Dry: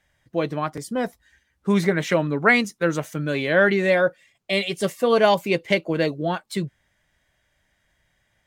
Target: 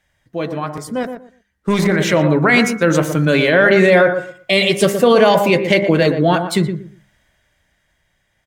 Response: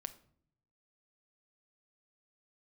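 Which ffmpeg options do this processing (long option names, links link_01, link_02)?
-filter_complex "[0:a]bandreject=frequency=66.75:width_type=h:width=4,bandreject=frequency=133.5:width_type=h:width=4,bandreject=frequency=200.25:width_type=h:width=4,bandreject=frequency=267:width_type=h:width=4,bandreject=frequency=333.75:width_type=h:width=4,bandreject=frequency=400.5:width_type=h:width=4,bandreject=frequency=467.25:width_type=h:width=4,bandreject=frequency=534:width_type=h:width=4,bandreject=frequency=600.75:width_type=h:width=4,bandreject=frequency=667.5:width_type=h:width=4,bandreject=frequency=734.25:width_type=h:width=4,bandreject=frequency=801:width_type=h:width=4,bandreject=frequency=867.75:width_type=h:width=4,bandreject=frequency=934.5:width_type=h:width=4,bandreject=frequency=1001.25:width_type=h:width=4,bandreject=frequency=1068:width_type=h:width=4,bandreject=frequency=1134.75:width_type=h:width=4,bandreject=frequency=1201.5:width_type=h:width=4,bandreject=frequency=1268.25:width_type=h:width=4,bandreject=frequency=1335:width_type=h:width=4,bandreject=frequency=1401.75:width_type=h:width=4,bandreject=frequency=1468.5:width_type=h:width=4,bandreject=frequency=1535.25:width_type=h:width=4,bandreject=frequency=1602:width_type=h:width=4,bandreject=frequency=1668.75:width_type=h:width=4,bandreject=frequency=1735.5:width_type=h:width=4,bandreject=frequency=1802.25:width_type=h:width=4,bandreject=frequency=1869:width_type=h:width=4,bandreject=frequency=1935.75:width_type=h:width=4,bandreject=frequency=2002.5:width_type=h:width=4,bandreject=frequency=2069.25:width_type=h:width=4,bandreject=frequency=2136:width_type=h:width=4,bandreject=frequency=2202.75:width_type=h:width=4,alimiter=limit=-15dB:level=0:latency=1:release=24,dynaudnorm=framelen=260:gausssize=13:maxgain=9dB,asettb=1/sr,asplit=3[link_01][link_02][link_03];[link_01]atrim=end=1.034[link_04];[link_02]atrim=start=1.03:end=1.87,asetpts=PTS-STARTPTS,afade=type=in:duration=0.004:curve=qsin,afade=type=out:start_time=0.836:duration=0.004:curve=qsin,aeval=exprs='0.376*(cos(1*acos(clip(val(0)/0.376,-1,1)))-cos(1*PI/2))+0.0237*(cos(3*acos(clip(val(0)/0.376,-1,1)))-cos(3*PI/2))+0.0237*(cos(7*acos(clip(val(0)/0.376,-1,1)))-cos(7*PI/2))':channel_layout=same[link_05];[link_03]atrim=start=1.866[link_06];[link_04][link_05]acrossfade=duration=0.004:curve1=hsin:curve2=qsin[link_07];[link_07][link_06]acrossfade=duration=0.004:curve1=qsin:curve2=hsin,asplit=2[link_08][link_09];[link_09]adelay=119,lowpass=frequency=1100:poles=1,volume=-7dB,asplit=2[link_10][link_11];[link_11]adelay=119,lowpass=frequency=1100:poles=1,volume=0.22,asplit=2[link_12][link_13];[link_13]adelay=119,lowpass=frequency=1100:poles=1,volume=0.22[link_14];[link_10][link_12][link_14]amix=inputs=3:normalize=0[link_15];[link_08][link_15]amix=inputs=2:normalize=0,volume=2.5dB"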